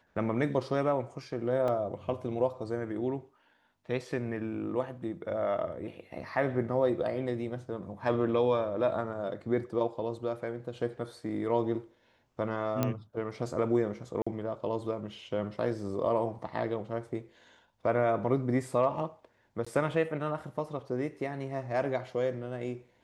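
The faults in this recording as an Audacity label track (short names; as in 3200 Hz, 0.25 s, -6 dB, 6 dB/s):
1.680000	1.680000	gap 2.4 ms
12.830000	12.830000	pop -14 dBFS
14.220000	14.270000	gap 45 ms
19.650000	19.660000	gap 15 ms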